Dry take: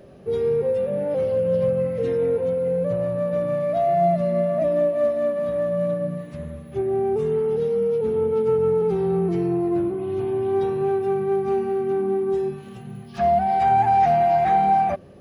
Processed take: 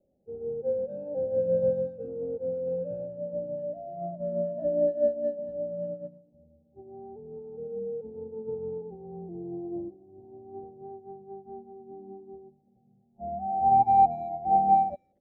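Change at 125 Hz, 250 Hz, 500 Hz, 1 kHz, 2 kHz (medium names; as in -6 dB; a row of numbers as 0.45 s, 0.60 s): -14.5 dB, -13.0 dB, -10.5 dB, -5.0 dB, under -25 dB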